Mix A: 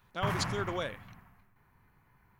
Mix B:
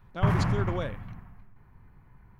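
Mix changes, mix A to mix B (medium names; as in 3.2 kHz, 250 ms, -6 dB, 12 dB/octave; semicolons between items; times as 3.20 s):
background +3.5 dB; master: add tilt EQ -2.5 dB/octave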